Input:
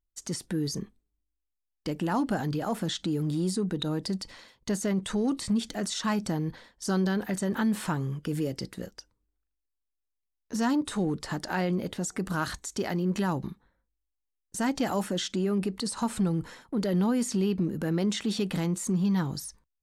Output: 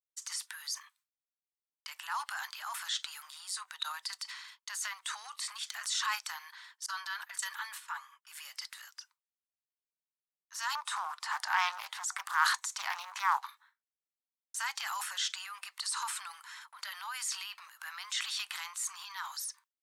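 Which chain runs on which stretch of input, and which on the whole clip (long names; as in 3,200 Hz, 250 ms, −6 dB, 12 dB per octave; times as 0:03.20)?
0:06.86–0:08.27: noise gate −35 dBFS, range −20 dB + notch comb filter 260 Hz + multiband upward and downward expander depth 100%
0:10.75–0:13.46: parametric band 770 Hz +12 dB 1.2 octaves + highs frequency-modulated by the lows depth 0.34 ms
whole clip: downward expander −54 dBFS; Butterworth high-pass 990 Hz 48 dB per octave; transient designer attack −3 dB, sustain +7 dB; level +1 dB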